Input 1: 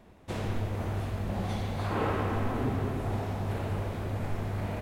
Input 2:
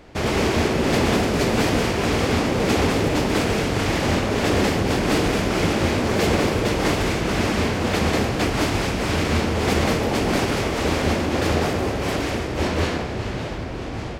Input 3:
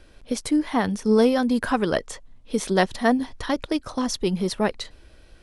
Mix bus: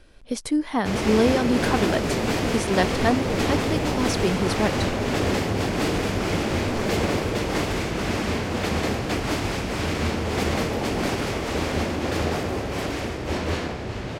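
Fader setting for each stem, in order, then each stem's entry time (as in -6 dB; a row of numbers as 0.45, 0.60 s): -2.5, -4.0, -1.5 dB; 2.45, 0.70, 0.00 s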